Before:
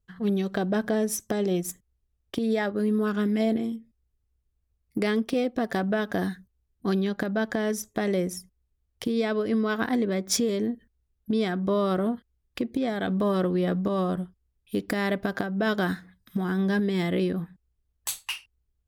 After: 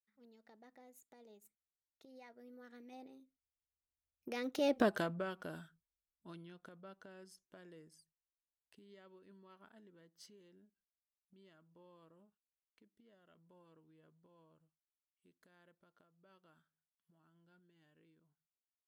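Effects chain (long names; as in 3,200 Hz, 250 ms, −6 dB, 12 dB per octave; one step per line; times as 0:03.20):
source passing by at 0:04.79, 48 m/s, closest 4.4 metres
low-shelf EQ 250 Hz −10 dB
level +1 dB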